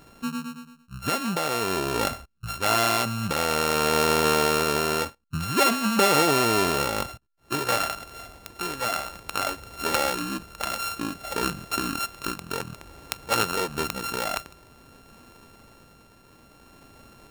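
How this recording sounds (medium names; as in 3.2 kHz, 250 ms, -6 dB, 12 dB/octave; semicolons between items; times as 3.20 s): a buzz of ramps at a fixed pitch in blocks of 32 samples; tremolo triangle 0.54 Hz, depth 45%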